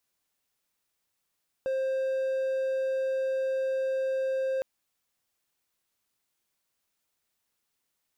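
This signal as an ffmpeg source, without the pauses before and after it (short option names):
-f lavfi -i "aevalsrc='0.0631*(1-4*abs(mod(529*t+0.25,1)-0.5))':d=2.96:s=44100"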